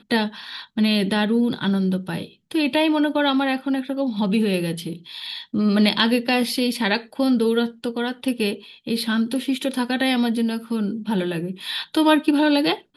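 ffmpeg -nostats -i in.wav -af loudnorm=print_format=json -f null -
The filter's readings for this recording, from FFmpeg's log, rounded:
"input_i" : "-21.6",
"input_tp" : "-5.0",
"input_lra" : "2.2",
"input_thresh" : "-31.7",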